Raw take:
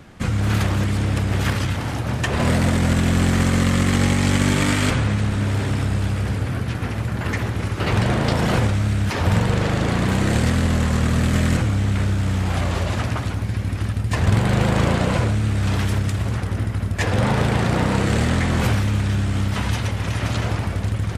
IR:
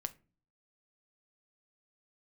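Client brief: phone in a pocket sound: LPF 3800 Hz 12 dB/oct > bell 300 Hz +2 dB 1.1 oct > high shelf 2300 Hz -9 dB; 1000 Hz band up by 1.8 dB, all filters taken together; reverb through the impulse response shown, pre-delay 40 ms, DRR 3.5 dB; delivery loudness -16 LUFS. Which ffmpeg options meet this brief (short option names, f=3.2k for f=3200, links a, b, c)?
-filter_complex "[0:a]equalizer=f=1k:t=o:g=4,asplit=2[a][b];[1:a]atrim=start_sample=2205,adelay=40[c];[b][c]afir=irnorm=-1:irlink=0,volume=-2dB[d];[a][d]amix=inputs=2:normalize=0,lowpass=3.8k,equalizer=f=300:t=o:w=1.1:g=2,highshelf=f=2.3k:g=-9,volume=3dB"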